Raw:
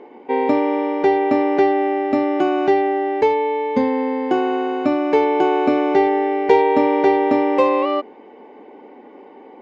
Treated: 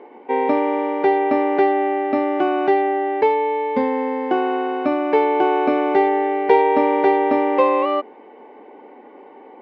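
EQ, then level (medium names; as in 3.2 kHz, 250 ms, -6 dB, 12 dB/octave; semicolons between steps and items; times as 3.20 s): high-pass 1 kHz 6 dB/octave; distance through air 190 m; tilt EQ -2 dB/octave; +5.0 dB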